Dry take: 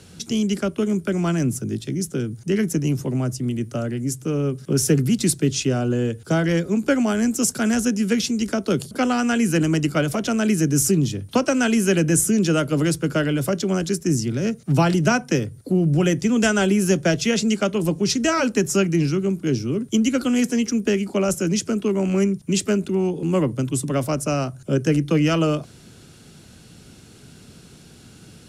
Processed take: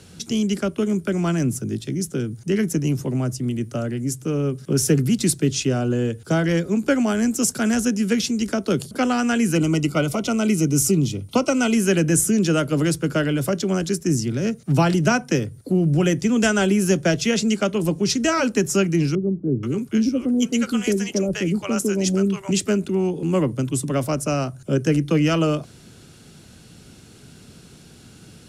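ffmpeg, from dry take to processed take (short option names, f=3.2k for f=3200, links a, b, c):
-filter_complex "[0:a]asettb=1/sr,asplit=3[a][b][c];[a]atrim=end=9.554[d];[b]atrim=start=9.55:end=11.74,asetpts=PTS-STARTPTS,afade=t=in:d=0.004:c=qsin,afade=t=out:st=2.186:d=0.004:c=qsin,asuperstop=centerf=1700:order=12:qfactor=4.4[e];[c]atrim=start=11.736[f];[d][e]acrossfade=d=0.004:c1=hsin:c2=qsin[g];[g][f]acrossfade=d=0.004:c1=qsin:c2=hsin,asettb=1/sr,asplit=3[h][i][j];[h]atrim=end=19.154[k];[i]atrim=start=19.15:end=22.51,asetpts=PTS-STARTPTS,afade=t=in:d=0.004:c=qsin,afade=t=out:st=3.356:d=0.004:c=qsin,acrossover=split=660[l][m];[m]adelay=480[n];[l][n]amix=inputs=2:normalize=0,atrim=end_sample=148176[o];[j]atrim=start=22.506[p];[k][o]acrossfade=d=0.004:c1=hsin:c2=qsin[q];[q][p]acrossfade=d=0.004:c1=qsin:c2=hsin"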